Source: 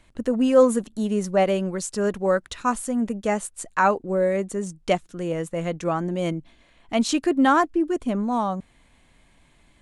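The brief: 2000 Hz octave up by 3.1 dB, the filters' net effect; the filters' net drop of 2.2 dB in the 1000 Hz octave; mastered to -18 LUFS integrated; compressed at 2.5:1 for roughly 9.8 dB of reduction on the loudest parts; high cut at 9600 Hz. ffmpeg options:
-af "lowpass=9.6k,equalizer=f=1k:t=o:g=-4.5,equalizer=f=2k:t=o:g=6,acompressor=threshold=-26dB:ratio=2.5,volume=11dB"

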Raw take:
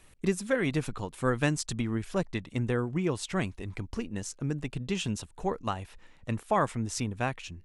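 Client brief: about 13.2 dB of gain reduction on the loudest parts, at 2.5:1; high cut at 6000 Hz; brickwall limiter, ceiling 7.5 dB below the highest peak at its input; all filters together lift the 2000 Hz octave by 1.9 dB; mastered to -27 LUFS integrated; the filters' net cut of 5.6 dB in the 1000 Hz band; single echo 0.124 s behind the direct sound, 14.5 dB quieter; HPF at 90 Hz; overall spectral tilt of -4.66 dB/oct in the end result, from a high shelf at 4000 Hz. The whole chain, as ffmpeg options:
-af "highpass=90,lowpass=6k,equalizer=f=1k:t=o:g=-9,equalizer=f=2k:t=o:g=3.5,highshelf=f=4k:g=8,acompressor=threshold=-43dB:ratio=2.5,alimiter=level_in=9dB:limit=-24dB:level=0:latency=1,volume=-9dB,aecho=1:1:124:0.188,volume=17.5dB"

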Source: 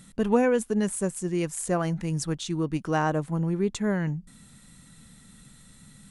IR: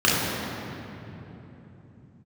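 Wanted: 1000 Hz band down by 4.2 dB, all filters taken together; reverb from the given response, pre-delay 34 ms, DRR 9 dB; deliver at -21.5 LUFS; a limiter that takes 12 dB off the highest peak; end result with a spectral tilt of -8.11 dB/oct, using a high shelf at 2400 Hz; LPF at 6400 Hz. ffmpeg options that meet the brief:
-filter_complex "[0:a]lowpass=6.4k,equalizer=f=1k:t=o:g=-4.5,highshelf=f=2.4k:g=-7.5,alimiter=limit=-22.5dB:level=0:latency=1,asplit=2[a][b];[1:a]atrim=start_sample=2205,adelay=34[c];[b][c]afir=irnorm=-1:irlink=0,volume=-29.5dB[d];[a][d]amix=inputs=2:normalize=0,volume=9.5dB"

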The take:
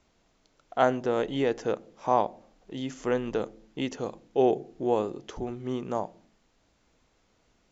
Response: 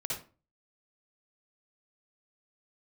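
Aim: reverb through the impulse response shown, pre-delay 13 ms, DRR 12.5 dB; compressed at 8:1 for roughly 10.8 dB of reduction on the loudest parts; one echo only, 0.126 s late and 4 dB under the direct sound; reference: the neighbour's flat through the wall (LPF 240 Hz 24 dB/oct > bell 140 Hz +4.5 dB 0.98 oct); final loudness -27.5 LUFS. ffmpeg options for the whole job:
-filter_complex "[0:a]acompressor=threshold=-28dB:ratio=8,aecho=1:1:126:0.631,asplit=2[a][b];[1:a]atrim=start_sample=2205,adelay=13[c];[b][c]afir=irnorm=-1:irlink=0,volume=-15dB[d];[a][d]amix=inputs=2:normalize=0,lowpass=f=240:w=0.5412,lowpass=f=240:w=1.3066,equalizer=f=140:t=o:w=0.98:g=4.5,volume=13.5dB"

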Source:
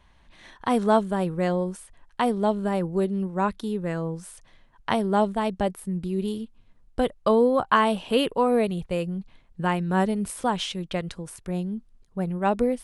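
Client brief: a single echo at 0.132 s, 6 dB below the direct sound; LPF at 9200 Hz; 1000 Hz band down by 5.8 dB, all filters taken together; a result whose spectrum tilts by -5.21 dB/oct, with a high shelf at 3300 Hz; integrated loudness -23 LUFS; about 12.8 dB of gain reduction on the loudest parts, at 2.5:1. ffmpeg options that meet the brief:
-af "lowpass=9.2k,equalizer=f=1k:t=o:g=-8,highshelf=f=3.3k:g=6.5,acompressor=threshold=-37dB:ratio=2.5,aecho=1:1:132:0.501,volume=13.5dB"

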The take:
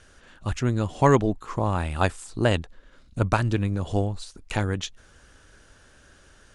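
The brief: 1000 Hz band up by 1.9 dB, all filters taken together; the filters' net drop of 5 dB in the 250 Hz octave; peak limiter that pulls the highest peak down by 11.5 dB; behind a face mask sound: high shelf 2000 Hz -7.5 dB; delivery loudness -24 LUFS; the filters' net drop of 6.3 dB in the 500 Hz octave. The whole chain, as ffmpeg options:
-af "equalizer=f=250:t=o:g=-4.5,equalizer=f=500:t=o:g=-8,equalizer=f=1k:t=o:g=6.5,alimiter=limit=-14.5dB:level=0:latency=1,highshelf=f=2k:g=-7.5,volume=6dB"

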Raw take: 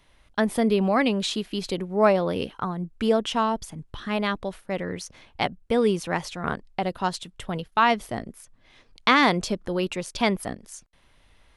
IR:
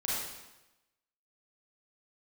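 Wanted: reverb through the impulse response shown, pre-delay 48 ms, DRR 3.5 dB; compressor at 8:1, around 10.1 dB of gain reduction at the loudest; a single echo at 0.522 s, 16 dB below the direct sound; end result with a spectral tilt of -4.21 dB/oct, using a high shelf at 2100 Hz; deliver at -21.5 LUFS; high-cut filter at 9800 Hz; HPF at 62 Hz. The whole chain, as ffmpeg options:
-filter_complex "[0:a]highpass=62,lowpass=9.8k,highshelf=f=2.1k:g=-4,acompressor=threshold=-25dB:ratio=8,aecho=1:1:522:0.158,asplit=2[a][b];[1:a]atrim=start_sample=2205,adelay=48[c];[b][c]afir=irnorm=-1:irlink=0,volume=-9.5dB[d];[a][d]amix=inputs=2:normalize=0,volume=9dB"

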